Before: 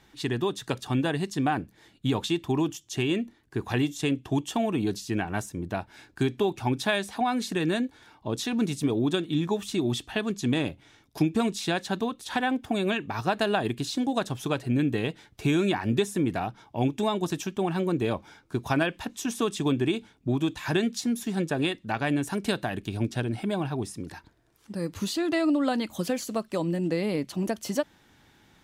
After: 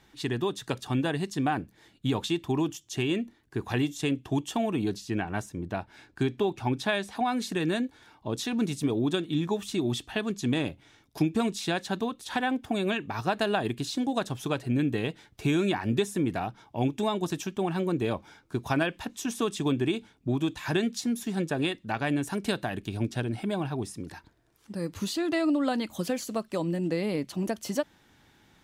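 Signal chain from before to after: 4.89–7.15 high shelf 6900 Hz -7 dB; gain -1.5 dB

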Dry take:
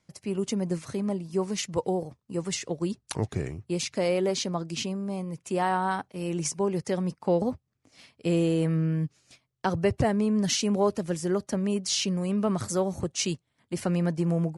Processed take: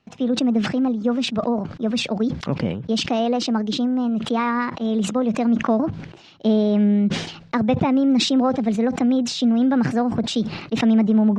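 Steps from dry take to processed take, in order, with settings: LPF 3500 Hz 24 dB/oct; in parallel at +1.5 dB: compressor, threshold -33 dBFS, peak gain reduction 13.5 dB; on the sum: varispeed +28%; dynamic EQ 230 Hz, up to +8 dB, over -39 dBFS, Q 2.3; sustainer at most 75 dB/s

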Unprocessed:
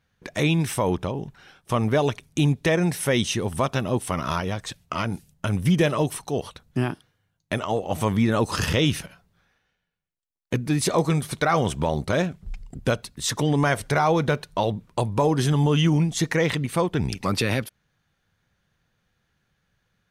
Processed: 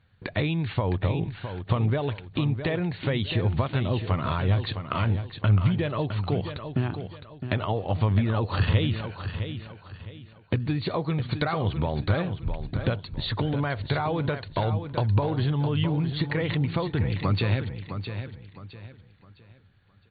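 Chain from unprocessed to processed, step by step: compressor, threshold -29 dBFS, peak gain reduction 13 dB; bell 98 Hz +13 dB 0.58 oct; feedback echo 0.661 s, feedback 32%, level -9 dB; gain +3.5 dB; AC-3 48 kbps 32000 Hz

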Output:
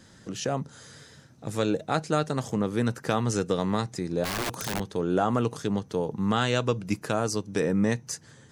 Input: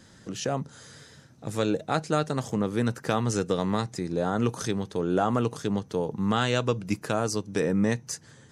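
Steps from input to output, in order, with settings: 4.24–4.8 wrapped overs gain 24 dB

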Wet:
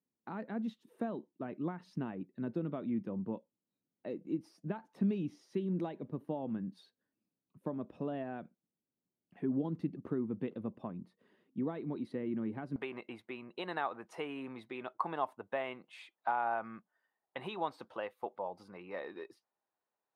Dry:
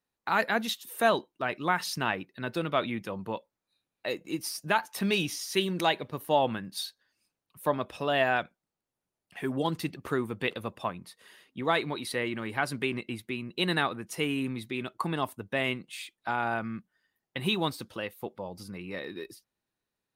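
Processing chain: compressor 4:1, threshold -29 dBFS, peak gain reduction 9.5 dB; band-pass 230 Hz, Q 1.6, from 12.76 s 810 Hz; gain +3 dB

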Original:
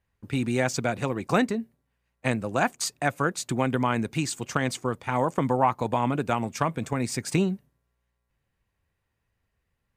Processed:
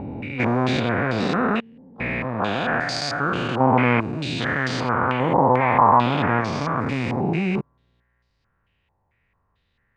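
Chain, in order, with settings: stepped spectrum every 0.4 s; harmoniser +12 st -13 dB; stepped low-pass 4.5 Hz 860–4700 Hz; gain +7.5 dB

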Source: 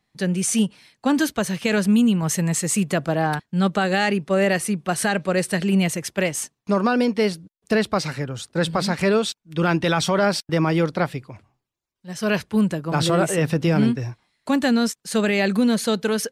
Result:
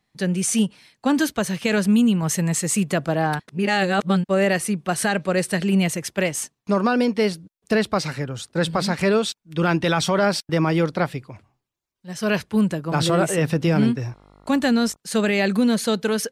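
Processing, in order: 3.48–4.29 reverse; 13.95–14.95 buzz 50 Hz, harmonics 28, -52 dBFS -3 dB/oct

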